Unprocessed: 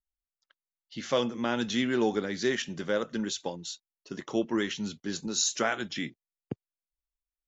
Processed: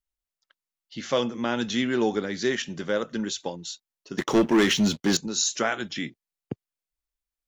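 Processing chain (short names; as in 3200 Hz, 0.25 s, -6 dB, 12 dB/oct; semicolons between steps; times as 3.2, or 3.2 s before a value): 4.18–5.17 sample leveller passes 3; gain +2.5 dB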